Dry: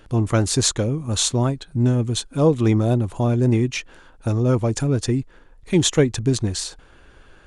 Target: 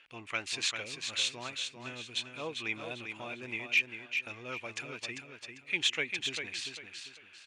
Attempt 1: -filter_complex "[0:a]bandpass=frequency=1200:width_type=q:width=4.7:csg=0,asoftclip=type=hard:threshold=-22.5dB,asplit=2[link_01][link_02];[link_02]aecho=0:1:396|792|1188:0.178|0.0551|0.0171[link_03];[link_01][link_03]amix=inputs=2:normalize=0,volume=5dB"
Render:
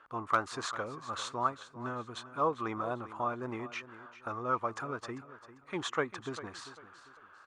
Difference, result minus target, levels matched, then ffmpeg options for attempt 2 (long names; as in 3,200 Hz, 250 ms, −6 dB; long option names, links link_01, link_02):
1,000 Hz band +15.0 dB; echo-to-direct −8.5 dB
-filter_complex "[0:a]bandpass=frequency=2500:width_type=q:width=4.7:csg=0,asoftclip=type=hard:threshold=-22.5dB,asplit=2[link_01][link_02];[link_02]aecho=0:1:396|792|1188|1584:0.473|0.147|0.0455|0.0141[link_03];[link_01][link_03]amix=inputs=2:normalize=0,volume=5dB"